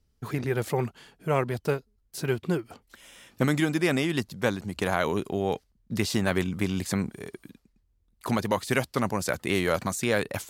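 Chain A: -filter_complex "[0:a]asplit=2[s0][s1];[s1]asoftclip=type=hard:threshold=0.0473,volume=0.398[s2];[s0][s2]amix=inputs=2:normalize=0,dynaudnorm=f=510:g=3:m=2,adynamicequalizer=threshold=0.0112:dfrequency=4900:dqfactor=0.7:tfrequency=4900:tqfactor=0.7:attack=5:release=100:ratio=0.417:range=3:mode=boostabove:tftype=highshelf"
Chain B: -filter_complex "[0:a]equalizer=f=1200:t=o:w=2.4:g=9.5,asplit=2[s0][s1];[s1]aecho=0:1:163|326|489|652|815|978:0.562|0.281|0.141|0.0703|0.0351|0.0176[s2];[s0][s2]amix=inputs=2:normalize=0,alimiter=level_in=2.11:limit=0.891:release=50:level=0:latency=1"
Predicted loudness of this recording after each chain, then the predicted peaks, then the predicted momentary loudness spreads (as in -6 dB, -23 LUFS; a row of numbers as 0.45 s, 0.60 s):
-20.5 LUFS, -16.5 LUFS; -5.0 dBFS, -1.0 dBFS; 13 LU, 11 LU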